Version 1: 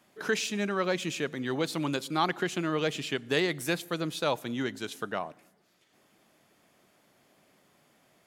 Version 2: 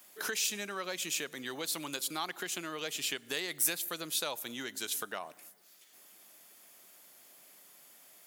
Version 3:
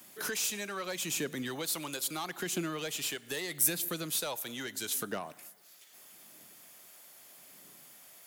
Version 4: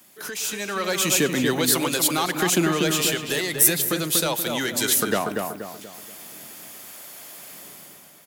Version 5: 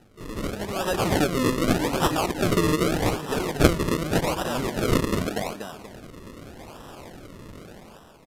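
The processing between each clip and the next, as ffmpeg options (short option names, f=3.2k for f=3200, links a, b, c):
-af "acompressor=threshold=-36dB:ratio=3,aemphasis=mode=production:type=riaa"
-filter_complex "[0:a]acrossover=split=380|540|7600[a][b][c][d];[a]aphaser=in_gain=1:out_gain=1:delay=1.4:decay=0.72:speed=0.78:type=triangular[e];[c]asoftclip=type=tanh:threshold=-36.5dB[f];[e][b][f][d]amix=inputs=4:normalize=0,volume=3dB"
-filter_complex "[0:a]dynaudnorm=f=150:g=9:m=12.5dB,asplit=2[a][b];[b]adelay=239,lowpass=f=1.7k:p=1,volume=-3.5dB,asplit=2[c][d];[d]adelay=239,lowpass=f=1.7k:p=1,volume=0.43,asplit=2[e][f];[f]adelay=239,lowpass=f=1.7k:p=1,volume=0.43,asplit=2[g][h];[h]adelay=239,lowpass=f=1.7k:p=1,volume=0.43,asplit=2[i][j];[j]adelay=239,lowpass=f=1.7k:p=1,volume=0.43[k];[c][e][g][i][k]amix=inputs=5:normalize=0[l];[a][l]amix=inputs=2:normalize=0,volume=1dB"
-af "acrusher=samples=39:mix=1:aa=0.000001:lfo=1:lforange=39:lforate=0.84,aresample=32000,aresample=44100,volume=-1dB"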